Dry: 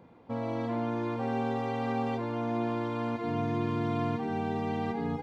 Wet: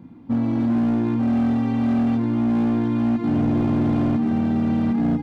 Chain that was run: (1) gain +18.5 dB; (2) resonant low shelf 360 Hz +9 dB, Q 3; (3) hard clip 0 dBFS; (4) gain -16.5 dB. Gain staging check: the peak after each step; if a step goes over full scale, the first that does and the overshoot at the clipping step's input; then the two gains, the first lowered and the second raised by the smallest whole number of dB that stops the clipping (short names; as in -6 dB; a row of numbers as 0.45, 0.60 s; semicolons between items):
+0.5, +9.0, 0.0, -16.5 dBFS; step 1, 9.0 dB; step 1 +9.5 dB, step 4 -7.5 dB